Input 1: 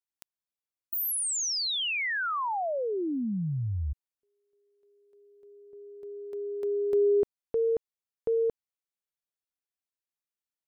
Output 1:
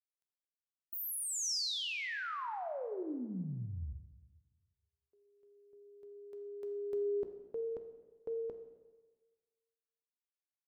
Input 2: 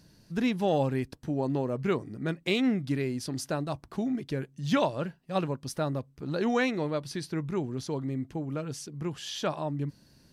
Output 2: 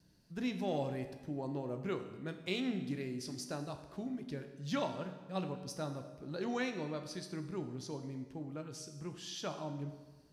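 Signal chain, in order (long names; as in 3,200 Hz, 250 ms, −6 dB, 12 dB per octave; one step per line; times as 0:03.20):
noise gate with hold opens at −58 dBFS, range −31 dB
dynamic equaliser 5,300 Hz, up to +5 dB, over −50 dBFS, Q 1.3
tuned comb filter 62 Hz, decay 0.71 s, harmonics all, mix 60%
dense smooth reverb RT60 1.4 s, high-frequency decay 0.85×, DRR 8.5 dB
level −4.5 dB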